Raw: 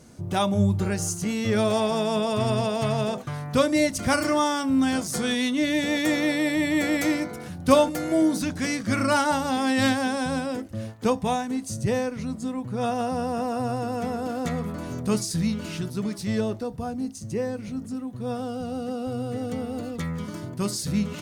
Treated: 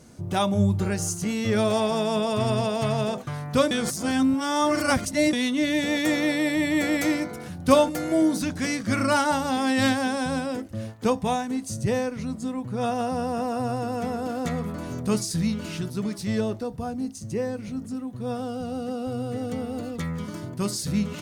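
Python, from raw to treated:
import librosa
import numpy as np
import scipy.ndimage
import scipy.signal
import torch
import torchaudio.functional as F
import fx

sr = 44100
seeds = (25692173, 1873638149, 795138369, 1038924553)

y = fx.edit(x, sr, fx.reverse_span(start_s=3.71, length_s=1.62), tone=tone)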